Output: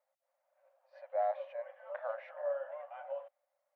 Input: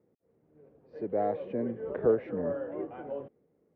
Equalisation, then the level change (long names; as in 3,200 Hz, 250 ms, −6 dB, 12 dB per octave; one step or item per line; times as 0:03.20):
linear-phase brick-wall high-pass 530 Hz
−1.0 dB